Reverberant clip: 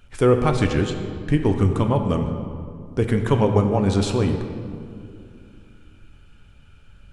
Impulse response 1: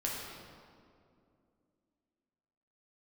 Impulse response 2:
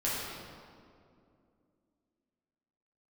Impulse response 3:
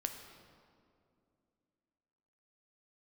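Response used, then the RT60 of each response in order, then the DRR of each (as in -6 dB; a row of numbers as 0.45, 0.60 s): 3; 2.5, 2.4, 2.5 s; -4.0, -8.5, 5.0 dB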